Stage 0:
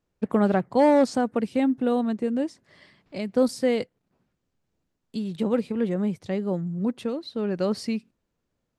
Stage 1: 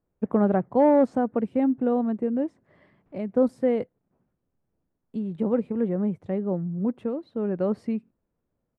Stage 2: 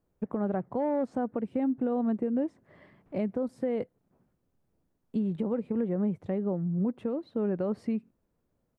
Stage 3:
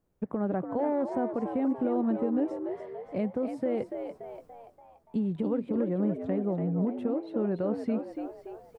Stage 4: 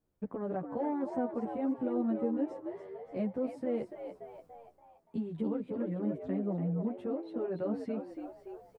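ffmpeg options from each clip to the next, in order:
-af "firequalizer=gain_entry='entry(640,0);entry(4700,-25);entry(7400,-21)':delay=0.05:min_phase=1"
-af "acompressor=threshold=-25dB:ratio=3,alimiter=limit=-23.5dB:level=0:latency=1:release=360,volume=2.5dB"
-filter_complex "[0:a]areverse,acompressor=mode=upward:threshold=-49dB:ratio=2.5,areverse,asplit=7[a][b][c][d][e][f][g];[b]adelay=288,afreqshift=77,volume=-7.5dB[h];[c]adelay=576,afreqshift=154,volume=-13.9dB[i];[d]adelay=864,afreqshift=231,volume=-20.3dB[j];[e]adelay=1152,afreqshift=308,volume=-26.6dB[k];[f]adelay=1440,afreqshift=385,volume=-33dB[l];[g]adelay=1728,afreqshift=462,volume=-39.4dB[m];[a][h][i][j][k][l][m]amix=inputs=7:normalize=0"
-filter_complex "[0:a]asplit=2[a][b];[b]adelay=10.6,afreqshift=-1.3[c];[a][c]amix=inputs=2:normalize=1,volume=-2dB"

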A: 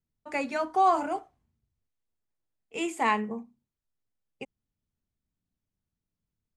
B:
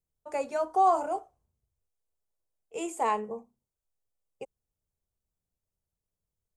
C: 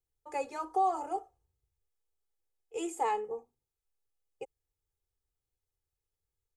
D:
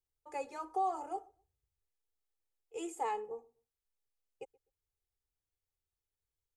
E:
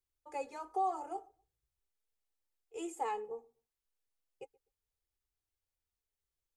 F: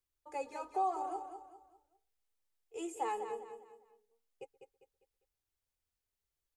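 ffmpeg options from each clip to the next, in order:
-af "equalizer=f=125:t=o:w=1:g=-3,equalizer=f=250:t=o:w=1:g=-11,equalizer=f=500:t=o:w=1:g=6,equalizer=f=2k:t=o:w=1:g=-11,equalizer=f=4k:t=o:w=1:g=-7,equalizer=f=8k:t=o:w=1:g=3"
-af "aecho=1:1:2.4:0.79,alimiter=limit=-16.5dB:level=0:latency=1:release=311,volume=-4.5dB"
-filter_complex "[0:a]asplit=2[a][b];[b]adelay=126,lowpass=f=1.1k:p=1,volume=-24dB,asplit=2[c][d];[d]adelay=126,lowpass=f=1.1k:p=1,volume=0.24[e];[a][c][e]amix=inputs=3:normalize=0,volume=-5dB"
-af "flanger=delay=2.8:depth=3.7:regen=-49:speed=0.37:shape=triangular,volume=3dB"
-af "aecho=1:1:200|400|600|800:0.376|0.135|0.0487|0.0175"

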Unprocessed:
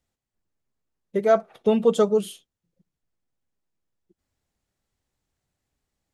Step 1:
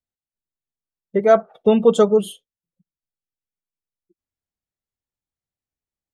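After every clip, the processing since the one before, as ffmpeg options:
-af "afftdn=nr=20:nf=-45,volume=5dB"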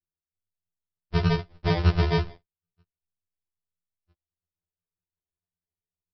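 -af "alimiter=limit=-10.5dB:level=0:latency=1:release=40,aresample=11025,acrusher=samples=40:mix=1:aa=0.000001,aresample=44100,afftfilt=real='re*2*eq(mod(b,4),0)':imag='im*2*eq(mod(b,4),0)':win_size=2048:overlap=0.75"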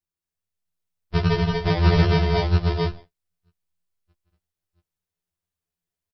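-af "aecho=1:1:169|234|250|655|678:0.501|0.596|0.355|0.316|0.668,volume=2dB"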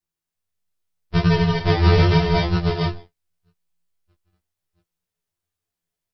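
-af "flanger=delay=17.5:depth=3.3:speed=0.81,volume=6dB"

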